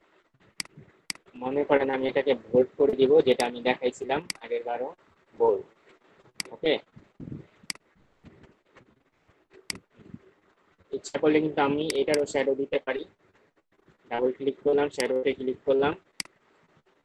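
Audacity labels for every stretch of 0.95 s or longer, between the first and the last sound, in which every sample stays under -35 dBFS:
7.760000	9.700000	silence
13.030000	14.110000	silence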